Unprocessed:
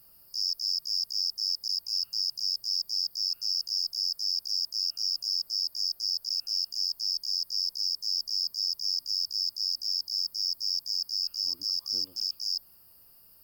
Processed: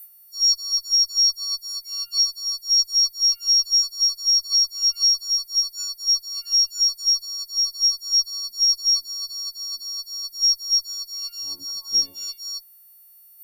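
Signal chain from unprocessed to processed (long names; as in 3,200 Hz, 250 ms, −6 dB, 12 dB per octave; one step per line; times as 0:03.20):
every partial snapped to a pitch grid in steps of 4 semitones
noise reduction from a noise print of the clip's start 14 dB
0:00.60–0:01.02: high-pass filter 760 Hz 24 dB per octave
harmonic generator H 8 −33 dB, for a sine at −14.5 dBFS
level +4.5 dB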